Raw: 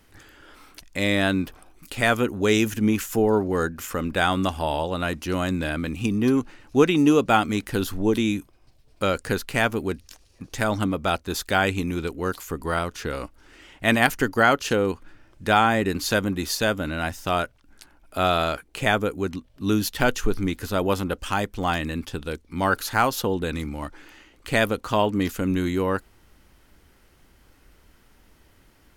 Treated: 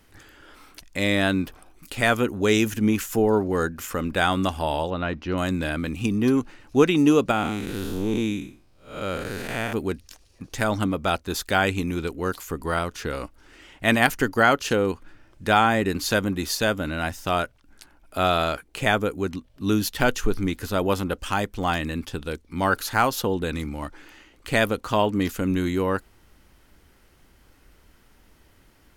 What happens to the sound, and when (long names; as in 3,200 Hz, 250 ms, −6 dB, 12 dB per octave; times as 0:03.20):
0:04.90–0:05.38: high-frequency loss of the air 220 metres
0:07.31–0:09.73: spectrum smeared in time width 223 ms